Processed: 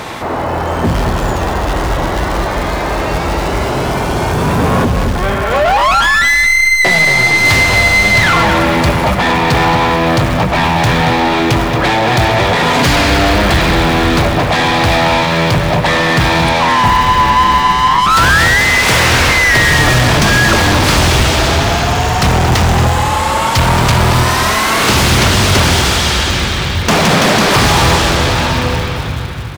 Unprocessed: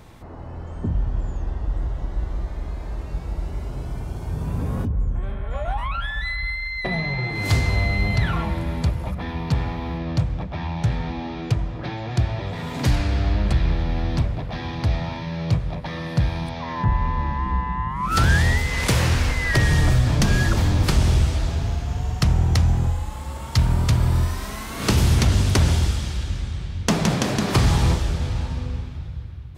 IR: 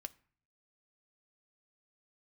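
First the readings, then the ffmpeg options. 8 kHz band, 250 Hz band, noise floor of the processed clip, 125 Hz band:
+15.5 dB, +11.5 dB, −17 dBFS, +6.5 dB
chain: -filter_complex "[0:a]acrusher=bits=8:mode=log:mix=0:aa=0.000001,asplit=2[link_01][link_02];[link_02]highpass=frequency=720:poles=1,volume=31dB,asoftclip=type=tanh:threshold=-8.5dB[link_03];[link_01][link_03]amix=inputs=2:normalize=0,lowpass=frequency=4300:poles=1,volume=-6dB,asplit=2[link_04][link_05];[link_05]adelay=227.4,volume=-7dB,highshelf=frequency=4000:gain=-5.12[link_06];[link_04][link_06]amix=inputs=2:normalize=0,volume=5dB"

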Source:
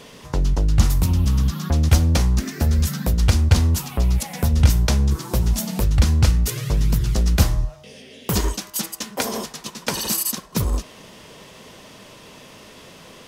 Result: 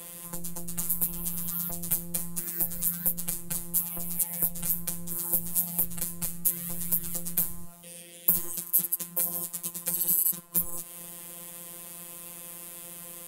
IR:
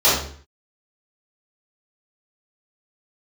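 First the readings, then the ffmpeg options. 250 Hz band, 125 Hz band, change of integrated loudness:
−15.5 dB, −24.0 dB, −7.0 dB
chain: -filter_complex "[0:a]afftfilt=real='hypot(re,im)*cos(PI*b)':imag='0':win_size=1024:overlap=0.75,acrossover=split=92|430|4900[link_01][link_02][link_03][link_04];[link_01]acompressor=threshold=-33dB:ratio=4[link_05];[link_02]acompressor=threshold=-42dB:ratio=4[link_06];[link_03]acompressor=threshold=-44dB:ratio=4[link_07];[link_04]acompressor=threshold=-42dB:ratio=4[link_08];[link_05][link_06][link_07][link_08]amix=inputs=4:normalize=0,aexciter=amount=11.2:drive=6.9:freq=8100,volume=-3dB"

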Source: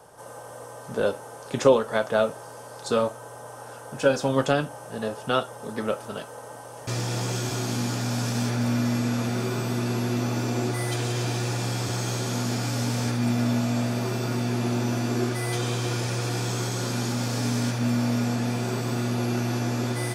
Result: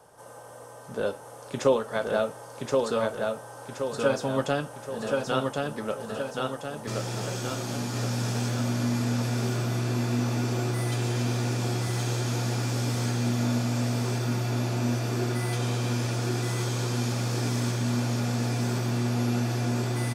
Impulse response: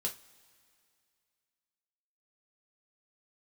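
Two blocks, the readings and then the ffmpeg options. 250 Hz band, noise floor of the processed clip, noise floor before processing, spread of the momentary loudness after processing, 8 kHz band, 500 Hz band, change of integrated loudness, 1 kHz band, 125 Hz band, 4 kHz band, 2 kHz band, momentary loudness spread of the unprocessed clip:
−2.5 dB, −45 dBFS, −42 dBFS, 6 LU, −2.5 dB, −2.5 dB, −2.0 dB, −2.5 dB, 0.0 dB, −2.5 dB, −2.5 dB, 13 LU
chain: -af "aecho=1:1:1074|2148|3222|4296|5370|6444:0.708|0.347|0.17|0.0833|0.0408|0.02,volume=-4.5dB"

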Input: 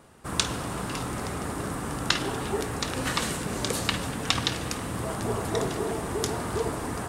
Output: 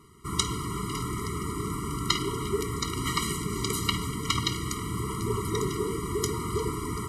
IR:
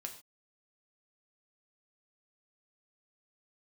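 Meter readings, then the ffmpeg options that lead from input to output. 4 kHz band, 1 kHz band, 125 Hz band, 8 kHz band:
−1.0 dB, −1.0 dB, +2.0 dB, 0.0 dB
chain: -af "equalizer=frequency=250:width_type=o:width=0.33:gain=-6,equalizer=frequency=800:width_type=o:width=0.33:gain=-6,equalizer=frequency=12500:width_type=o:width=0.33:gain=4,afftfilt=real='re*eq(mod(floor(b*sr/1024/470),2),0)':imag='im*eq(mod(floor(b*sr/1024/470),2),0)':win_size=1024:overlap=0.75,volume=2dB"

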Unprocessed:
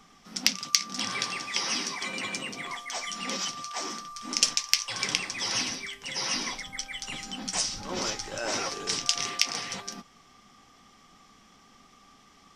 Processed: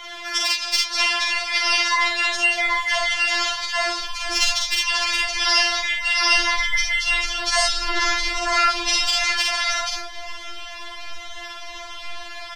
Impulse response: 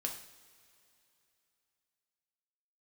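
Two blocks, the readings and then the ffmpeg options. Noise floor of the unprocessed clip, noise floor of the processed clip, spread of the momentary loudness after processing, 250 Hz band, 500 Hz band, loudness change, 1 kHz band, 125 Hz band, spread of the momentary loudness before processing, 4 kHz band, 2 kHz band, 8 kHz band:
−58 dBFS, −35 dBFS, 17 LU, +0.5 dB, +9.0 dB, +10.0 dB, +12.5 dB, can't be measured, 10 LU, +9.0 dB, +15.0 dB, +3.0 dB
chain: -filter_complex "[0:a]asubboost=boost=10:cutoff=67,acontrast=70,acrossover=split=500 3600:gain=0.0891 1 0.0631[link_01][link_02][link_03];[link_01][link_02][link_03]amix=inputs=3:normalize=0,acrossover=split=130[link_04][link_05];[link_05]acompressor=threshold=-45dB:ratio=2.5[link_06];[link_04][link_06]amix=inputs=2:normalize=0,flanger=delay=0.6:depth=6:regen=84:speed=1.5:shape=sinusoidal,aeval=exprs='(tanh(7.94*val(0)+0.5)-tanh(0.5))/7.94':channel_layout=same,crystalizer=i=2.5:c=0,asplit=2[link_07][link_08];[link_08]aecho=0:1:46|75:0.668|0.335[link_09];[link_07][link_09]amix=inputs=2:normalize=0,alimiter=level_in=22dB:limit=-1dB:release=50:level=0:latency=1,afftfilt=real='re*4*eq(mod(b,16),0)':imag='im*4*eq(mod(b,16),0)':win_size=2048:overlap=0.75,volume=4dB"

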